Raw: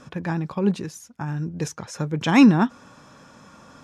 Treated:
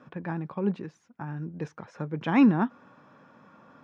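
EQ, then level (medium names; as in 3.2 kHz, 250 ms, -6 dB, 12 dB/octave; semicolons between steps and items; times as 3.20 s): band-pass 140–2200 Hz; -5.5 dB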